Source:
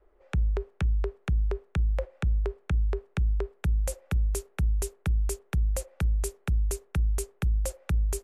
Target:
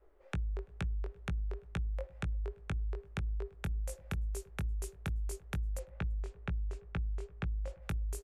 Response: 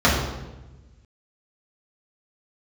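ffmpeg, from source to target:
-filter_complex "[0:a]flanger=delay=17.5:depth=3.9:speed=2.3,asplit=3[link_01][link_02][link_03];[link_01]afade=type=out:start_time=5.78:duration=0.02[link_04];[link_02]lowpass=3000,afade=type=in:start_time=5.78:duration=0.02,afade=type=out:start_time=7.81:duration=0.02[link_05];[link_03]afade=type=in:start_time=7.81:duration=0.02[link_06];[link_04][link_05][link_06]amix=inputs=3:normalize=0,asplit=2[link_07][link_08];[link_08]adelay=338.2,volume=-27dB,highshelf=frequency=4000:gain=-7.61[link_09];[link_07][link_09]amix=inputs=2:normalize=0,acompressor=threshold=-35dB:ratio=6,volume=1dB"

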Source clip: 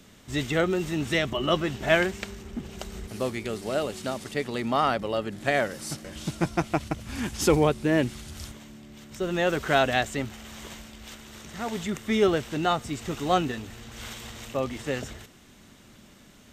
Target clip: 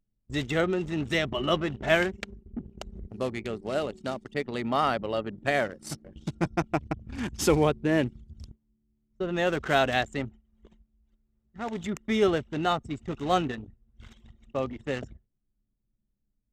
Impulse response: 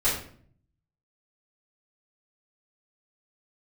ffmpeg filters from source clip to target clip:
-af "agate=range=-9dB:threshold=-41dB:ratio=16:detection=peak,anlmdn=6.31,volume=-1.5dB"

